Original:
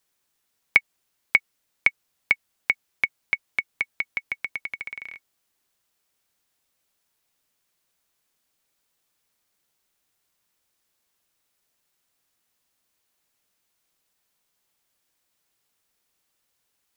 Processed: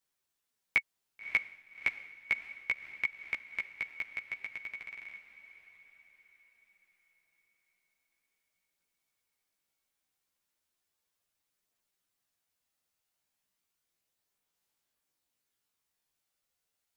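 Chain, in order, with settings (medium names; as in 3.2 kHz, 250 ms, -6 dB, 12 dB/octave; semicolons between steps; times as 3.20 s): echo that smears into a reverb 586 ms, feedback 46%, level -12.5 dB; chorus voices 2, 0.17 Hz, delay 14 ms, depth 4.2 ms; trim -6.5 dB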